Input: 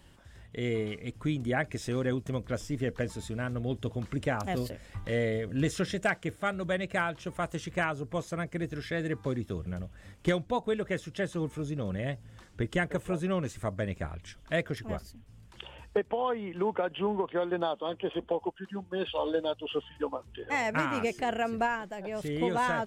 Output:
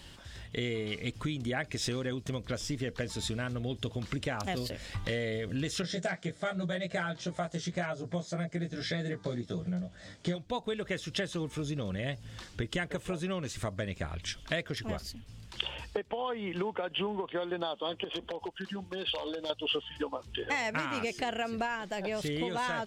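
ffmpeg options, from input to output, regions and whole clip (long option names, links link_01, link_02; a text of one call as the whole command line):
ffmpeg -i in.wav -filter_complex "[0:a]asettb=1/sr,asplit=3[link_01][link_02][link_03];[link_01]atrim=end=5.824[link_04];[link_02]atrim=start=5.82:end=10.36,asetpts=PTS-STARTPTS,afade=type=in:duration=0.004:curve=qsin,afade=type=out:start_time=4.536:duration=0.004:curve=qsin,flanger=delay=1.5:depth=4:regen=73:speed=1.9:shape=sinusoidal,highpass=100,equalizer=frequency=160:width_type=q:width=4:gain=8,equalizer=frequency=640:width_type=q:width=4:gain=6,equalizer=frequency=1100:width_type=q:width=4:gain=-5,equalizer=frequency=2700:width_type=q:width=4:gain=-9,lowpass=frequency=8600:width=0.5412,lowpass=frequency=8600:width=1.3066,asplit=2[link_05][link_06];[link_06]adelay=17,volume=-2dB[link_07];[link_05][link_07]amix=inputs=2:normalize=0,atrim=end_sample=200214[link_08];[link_03]atrim=start=10.356[link_09];[link_04][link_08]acrossfade=duration=0.004:curve1=hsin:curve2=qsin[link_10];[link_10][link_09]acrossfade=duration=0.004:curve1=qsin:curve2=hsin,asettb=1/sr,asplit=3[link_11][link_12][link_13];[link_11]atrim=end=18.044[link_14];[link_12]atrim=start=18.04:end=19.5,asetpts=PTS-STARTPTS,afade=type=in:duration=0.004:curve=qsin,afade=type=out:start_time=1.456:duration=0.004:curve=qsin,acompressor=threshold=-38dB:ratio=8:attack=3.2:release=140:knee=1:detection=peak,aeval=exprs='0.0188*(abs(mod(val(0)/0.0188+3,4)-2)-1)':channel_layout=same[link_15];[link_13]atrim=start=19.496[link_16];[link_14][link_15]acrossfade=duration=0.004:curve1=hsin:curve2=qsin[link_17];[link_17][link_16]acrossfade=duration=0.004:curve1=qsin:curve2=hsin,acompressor=threshold=-36dB:ratio=6,equalizer=frequency=4200:width_type=o:width=1.6:gain=10,volume=4.5dB" out.wav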